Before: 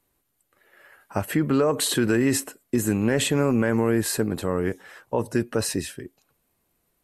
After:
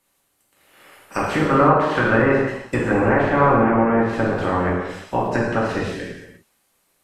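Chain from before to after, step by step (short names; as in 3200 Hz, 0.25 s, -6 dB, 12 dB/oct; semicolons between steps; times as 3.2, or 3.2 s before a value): spectral limiter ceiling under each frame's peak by 19 dB; treble ducked by the level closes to 1100 Hz, closed at -19.5 dBFS; 1.4–3.53 dynamic EQ 1400 Hz, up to +6 dB, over -39 dBFS, Q 0.87; non-linear reverb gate 0.38 s falling, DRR -4.5 dB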